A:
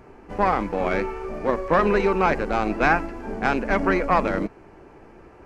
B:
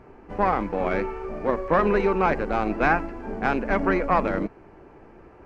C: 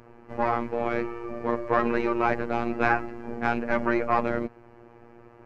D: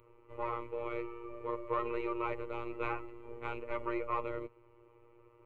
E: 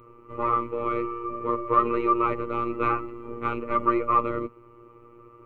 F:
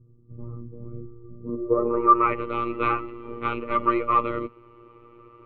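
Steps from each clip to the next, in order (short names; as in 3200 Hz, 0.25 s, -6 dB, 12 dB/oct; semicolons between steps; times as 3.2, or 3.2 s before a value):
high shelf 4500 Hz -11 dB; gain -1 dB
robotiser 118 Hz
fixed phaser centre 1100 Hz, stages 8; gain -8.5 dB
small resonant body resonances 210/1200 Hz, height 17 dB, ringing for 35 ms; gain +5.5 dB
low-pass sweep 160 Hz -> 3500 Hz, 1.38–2.44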